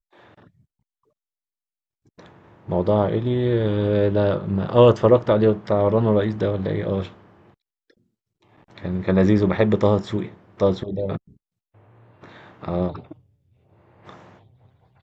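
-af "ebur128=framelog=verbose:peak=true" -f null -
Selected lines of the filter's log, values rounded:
Integrated loudness:
  I:         -20.5 LUFS
  Threshold: -33.0 LUFS
Loudness range:
  LRA:        13.7 LU
  Threshold: -42.6 LUFS
  LRA low:   -32.5 LUFS
  LRA high:  -18.8 LUFS
True peak:
  Peak:       -2.0 dBFS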